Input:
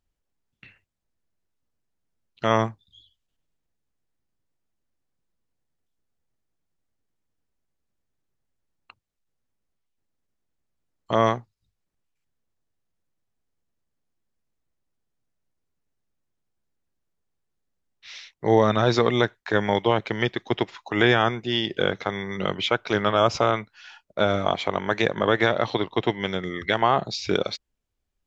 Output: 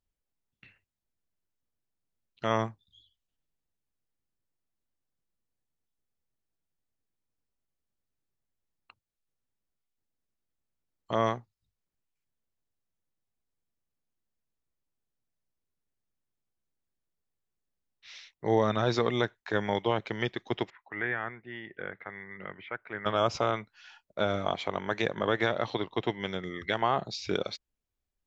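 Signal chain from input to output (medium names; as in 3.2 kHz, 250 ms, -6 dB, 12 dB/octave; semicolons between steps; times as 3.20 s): 20.70–23.06 s: four-pole ladder low-pass 2.1 kHz, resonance 65%; trim -7 dB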